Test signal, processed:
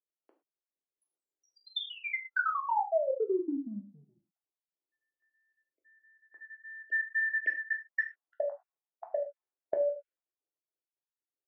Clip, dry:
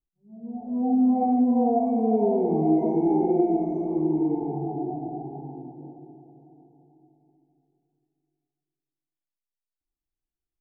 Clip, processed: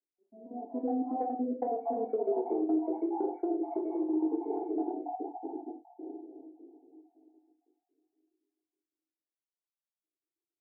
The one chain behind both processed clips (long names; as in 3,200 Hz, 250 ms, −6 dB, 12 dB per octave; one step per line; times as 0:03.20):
time-frequency cells dropped at random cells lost 49%
treble cut that deepens with the level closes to 690 Hz, closed at −19.5 dBFS
elliptic high-pass filter 300 Hz, stop band 60 dB
low-pass that shuts in the quiet parts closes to 420 Hz, open at −23 dBFS
downward compressor 5 to 1, threshold −36 dBFS
reverb whose tail is shaped and stops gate 140 ms falling, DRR 1 dB
level +5 dB